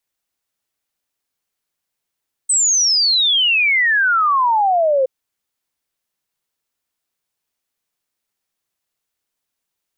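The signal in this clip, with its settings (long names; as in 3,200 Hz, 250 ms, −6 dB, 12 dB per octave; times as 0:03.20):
exponential sine sweep 8,300 Hz → 510 Hz 2.57 s −12 dBFS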